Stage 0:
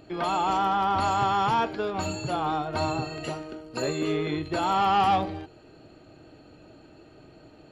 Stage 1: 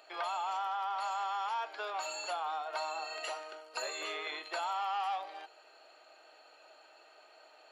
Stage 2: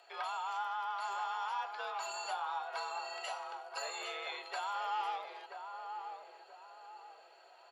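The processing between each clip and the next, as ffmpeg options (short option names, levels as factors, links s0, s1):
-af "highpass=f=660:w=0.5412,highpass=f=660:w=1.3066,acompressor=threshold=0.0178:ratio=4"
-filter_complex "[0:a]afreqshift=48,flanger=delay=7:depth=2.4:regen=78:speed=1.2:shape=sinusoidal,asplit=2[s0][s1];[s1]adelay=981,lowpass=f=870:p=1,volume=0.631,asplit=2[s2][s3];[s3]adelay=981,lowpass=f=870:p=1,volume=0.49,asplit=2[s4][s5];[s5]adelay=981,lowpass=f=870:p=1,volume=0.49,asplit=2[s6][s7];[s7]adelay=981,lowpass=f=870:p=1,volume=0.49,asplit=2[s8][s9];[s9]adelay=981,lowpass=f=870:p=1,volume=0.49,asplit=2[s10][s11];[s11]adelay=981,lowpass=f=870:p=1,volume=0.49[s12];[s0][s2][s4][s6][s8][s10][s12]amix=inputs=7:normalize=0,volume=1.19"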